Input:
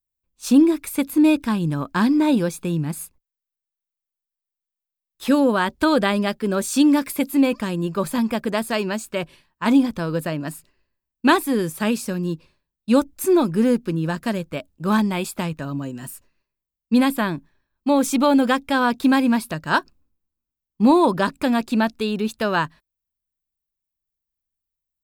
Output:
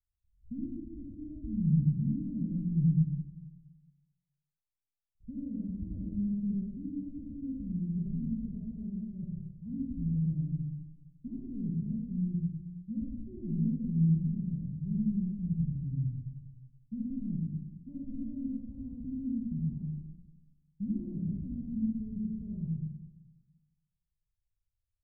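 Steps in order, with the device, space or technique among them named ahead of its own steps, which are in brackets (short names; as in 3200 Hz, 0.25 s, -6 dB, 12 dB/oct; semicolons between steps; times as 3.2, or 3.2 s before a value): club heard from the street (limiter -11.5 dBFS, peak gain reduction 7 dB; LPF 120 Hz 24 dB/oct; reverb RT60 1.1 s, pre-delay 56 ms, DRR -4 dB); gain +3.5 dB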